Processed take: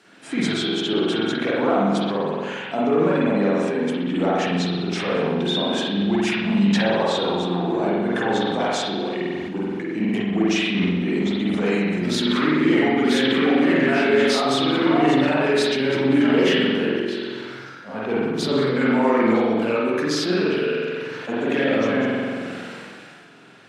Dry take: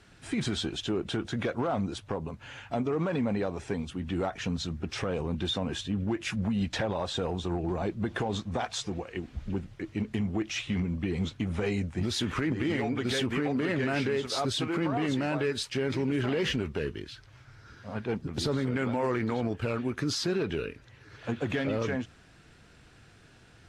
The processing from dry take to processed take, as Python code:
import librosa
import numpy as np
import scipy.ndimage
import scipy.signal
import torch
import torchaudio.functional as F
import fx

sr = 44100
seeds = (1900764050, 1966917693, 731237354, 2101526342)

y = scipy.signal.sosfilt(scipy.signal.butter(4, 180.0, 'highpass', fs=sr, output='sos'), x)
y = fx.rev_spring(y, sr, rt60_s=1.3, pass_ms=(45,), chirp_ms=20, drr_db=-6.0)
y = fx.sustainer(y, sr, db_per_s=22.0)
y = F.gain(torch.from_numpy(y), 3.5).numpy()